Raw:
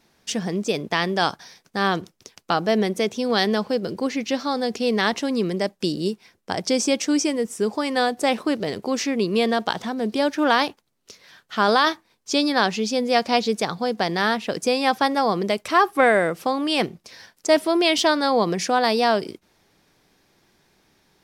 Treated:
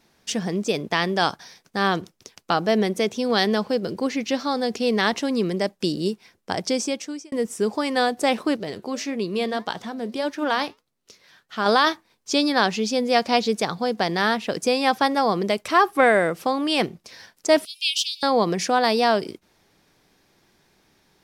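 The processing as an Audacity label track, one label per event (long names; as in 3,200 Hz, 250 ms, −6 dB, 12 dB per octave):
6.560000	7.320000	fade out linear
8.560000	11.660000	flanger 1.7 Hz, delay 4.2 ms, depth 3 ms, regen −84%
17.650000	18.230000	Butterworth high-pass 2,500 Hz 96 dB per octave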